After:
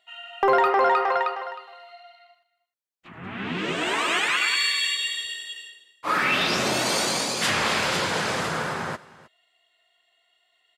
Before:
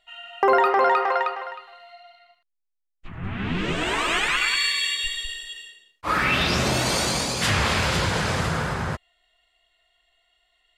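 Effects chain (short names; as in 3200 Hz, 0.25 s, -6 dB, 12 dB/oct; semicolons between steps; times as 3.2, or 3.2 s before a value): HPF 220 Hz 12 dB/oct; soft clip -9 dBFS, distortion -25 dB; echo 0.312 s -20 dB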